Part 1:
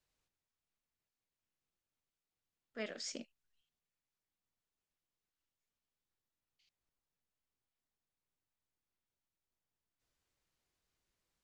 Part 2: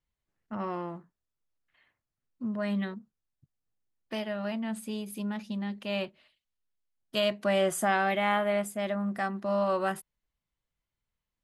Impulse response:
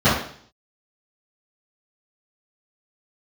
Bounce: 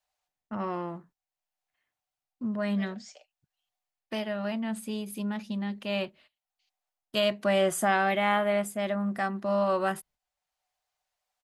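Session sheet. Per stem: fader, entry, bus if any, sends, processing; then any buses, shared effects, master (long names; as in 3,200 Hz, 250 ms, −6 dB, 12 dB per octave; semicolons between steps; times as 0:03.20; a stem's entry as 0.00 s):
+1.0 dB, 0.00 s, no send, Butterworth high-pass 540 Hz 36 dB per octave; parametric band 750 Hz +12 dB 0.43 octaves; comb filter 6.7 ms, depth 40%; automatic ducking −8 dB, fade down 0.25 s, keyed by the second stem
+1.5 dB, 0.00 s, no send, noise gate −58 dBFS, range −15 dB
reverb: not used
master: no processing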